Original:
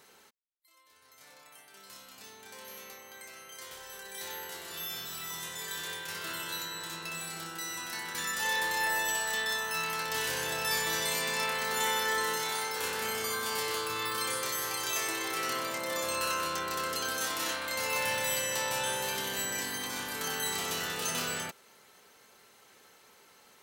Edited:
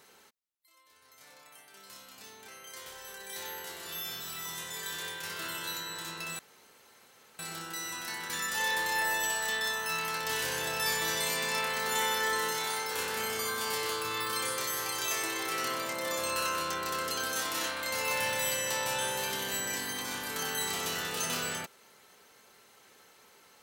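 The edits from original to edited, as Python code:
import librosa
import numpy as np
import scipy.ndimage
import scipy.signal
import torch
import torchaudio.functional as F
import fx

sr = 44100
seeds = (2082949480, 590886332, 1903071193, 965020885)

y = fx.edit(x, sr, fx.cut(start_s=2.48, length_s=0.85),
    fx.insert_room_tone(at_s=7.24, length_s=1.0), tone=tone)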